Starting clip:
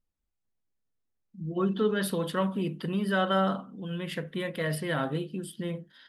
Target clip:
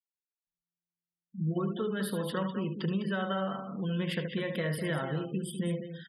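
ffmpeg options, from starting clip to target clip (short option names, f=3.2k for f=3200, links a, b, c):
-af "acompressor=threshold=-34dB:ratio=10,equalizer=f=260:w=4.4:g=-8.5,aecho=1:1:75|202:0.376|0.355,afftfilt=real='re*gte(hypot(re,im),0.00355)':imag='im*gte(hypot(re,im),0.00355)':win_size=1024:overlap=0.75,highpass=120,bass=f=250:g=5,treble=f=4k:g=-2,volume=4dB"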